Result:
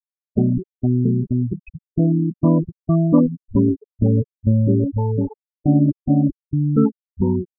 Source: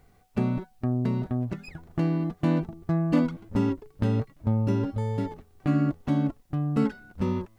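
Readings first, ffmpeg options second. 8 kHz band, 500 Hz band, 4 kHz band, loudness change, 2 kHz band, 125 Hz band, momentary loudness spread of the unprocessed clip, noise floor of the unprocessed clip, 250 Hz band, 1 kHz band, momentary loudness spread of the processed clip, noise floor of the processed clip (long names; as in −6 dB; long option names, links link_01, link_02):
can't be measured, +8.0 dB, below −35 dB, +8.5 dB, below −15 dB, +8.5 dB, 7 LU, −60 dBFS, +8.5 dB, +2.5 dB, 7 LU, below −85 dBFS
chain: -af "acrusher=bits=9:mode=log:mix=0:aa=0.000001,afftfilt=real='re*gte(hypot(re,im),0.0891)':imag='im*gte(hypot(re,im),0.0891)':win_size=1024:overlap=0.75,highshelf=frequency=2300:gain=11.5,volume=8.5dB"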